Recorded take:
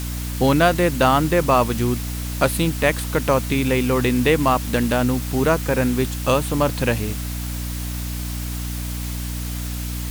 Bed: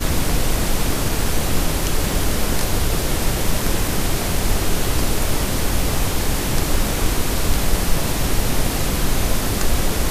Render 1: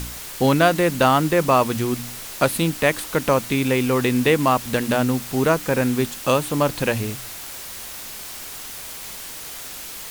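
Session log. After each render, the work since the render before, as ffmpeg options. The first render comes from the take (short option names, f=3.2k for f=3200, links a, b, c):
-af "bandreject=f=60:t=h:w=4,bandreject=f=120:t=h:w=4,bandreject=f=180:t=h:w=4,bandreject=f=240:t=h:w=4,bandreject=f=300:t=h:w=4"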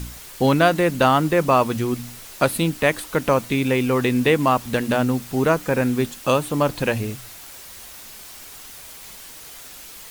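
-af "afftdn=nr=6:nf=-35"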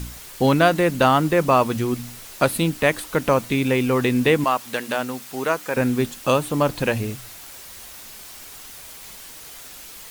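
-filter_complex "[0:a]asettb=1/sr,asplit=3[a][b][c];[a]atrim=end=4.444[d];[b]atrim=start=4.44:end=5.77,asetpts=PTS-STARTPTS,afade=t=in:d=0.004:c=qsin,afade=t=out:st=1.326:d=0.004:c=qsin,highpass=f=700:p=1[e];[c]atrim=start=5.766[f];[d][e]acrossfade=d=0.004:c1=hsin:c2=qsin[g];[g][f]acrossfade=d=0.004:c1=qsin:c2=hsin"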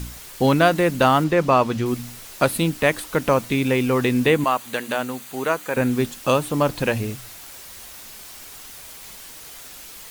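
-filter_complex "[0:a]asettb=1/sr,asplit=3[a][b][c];[a]atrim=end=1.244[d];[b]atrim=start=1.24:end=1.86,asetpts=PTS-STARTPTS,afade=t=in:d=0.004:c=qsin,afade=t=out:st=0.616:d=0.004:c=qsin,acrossover=split=6800[e][f];[f]acompressor=threshold=-49dB:ratio=4:attack=1:release=60[g];[e][g]amix=inputs=2:normalize=0[h];[c]atrim=start=1.856[i];[d][h]acrossfade=d=0.004:c1=hsin:c2=qsin[j];[j][i]acrossfade=d=0.004:c1=qsin:c2=hsin,asettb=1/sr,asplit=3[k][l][m];[k]atrim=end=4.264[n];[l]atrim=start=4.26:end=5.91,asetpts=PTS-STARTPTS,afade=t=in:d=0.004:c=qsin,afade=t=out:st=1.646:d=0.004:c=qsin,bandreject=f=5.3k:w=6[o];[m]atrim=start=5.906[p];[n][o]acrossfade=d=0.004:c1=hsin:c2=qsin[q];[q][p]acrossfade=d=0.004:c1=qsin:c2=hsin"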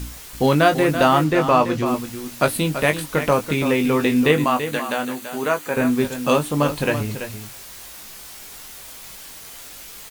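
-filter_complex "[0:a]asplit=2[a][b];[b]adelay=20,volume=-7dB[c];[a][c]amix=inputs=2:normalize=0,aecho=1:1:334:0.316"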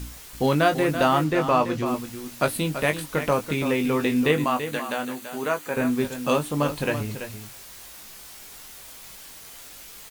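-af "volume=-4.5dB"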